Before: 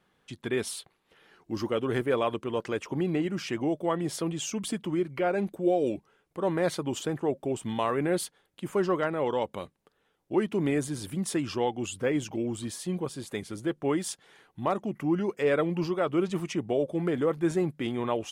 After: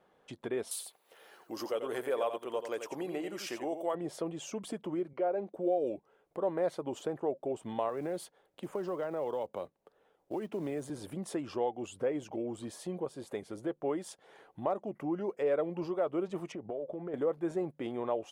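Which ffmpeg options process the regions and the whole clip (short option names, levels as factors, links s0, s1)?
-filter_complex "[0:a]asettb=1/sr,asplit=3[s0][s1][s2];[s0]atrim=end=0.714[s3];[s1]atrim=start=0.71:end=3.95,asetpts=PTS-STARTPTS,afade=t=in:d=0.004:c=qsin,afade=t=out:st=3.236:d=0.004:c=qsin,aemphasis=mode=production:type=riaa,aecho=1:1:88:0.355,atrim=end_sample=142884[s4];[s2]atrim=start=3.946[s5];[s3][s4]acrossfade=d=0.004:c1=hsin:c2=qsin[s6];[s6][s5]acrossfade=d=0.004:c1=qsin:c2=hsin,asettb=1/sr,asplit=3[s7][s8][s9];[s7]atrim=end=5.134[s10];[s8]atrim=start=5.13:end=5.55,asetpts=PTS-STARTPTS,afade=t=in:d=0.004:c=qsin,afade=t=out:st=0.416:d=0.004:c=qsin,highpass=220,lowpass=5000,equalizer=f=2400:t=o:w=1.9:g=-5.5[s11];[s9]atrim=start=5.546[s12];[s10][s11]acrossfade=d=0.004:c1=hsin:c2=qsin[s13];[s13][s12]acrossfade=d=0.004:c1=qsin:c2=hsin,asettb=1/sr,asplit=3[s14][s15][s16];[s14]atrim=end=7.894[s17];[s15]atrim=start=7.89:end=10.9,asetpts=PTS-STARTPTS,afade=t=in:d=0.004:c=qsin,afade=t=out:st=3.006:d=0.004:c=qsin,acrossover=split=180|3000[s18][s19][s20];[s19]acompressor=threshold=0.0398:ratio=10:attack=3.2:release=140:knee=2.83:detection=peak[s21];[s18][s21][s20]amix=inputs=3:normalize=0,acrusher=bits=6:mode=log:mix=0:aa=0.000001[s22];[s16]atrim=start=10.896[s23];[s17][s22]acrossfade=d=0.004:c1=hsin:c2=qsin[s24];[s24][s23]acrossfade=d=0.004:c1=qsin:c2=hsin,asettb=1/sr,asplit=3[s25][s26][s27];[s25]atrim=end=16.524[s28];[s26]atrim=start=16.52:end=17.14,asetpts=PTS-STARTPTS,afade=t=in:d=0.004:c=qsin,afade=t=out:st=0.616:d=0.004:c=qsin,aemphasis=mode=reproduction:type=75fm,acompressor=threshold=0.0224:ratio=6:attack=3.2:release=140:knee=1:detection=peak[s29];[s27]atrim=start=17.136[s30];[s28][s29]acrossfade=d=0.004:c1=hsin:c2=qsin[s31];[s31][s30]acrossfade=d=0.004:c1=qsin:c2=hsin,equalizer=f=600:w=0.71:g=15,acompressor=threshold=0.01:ratio=1.5,volume=0.473"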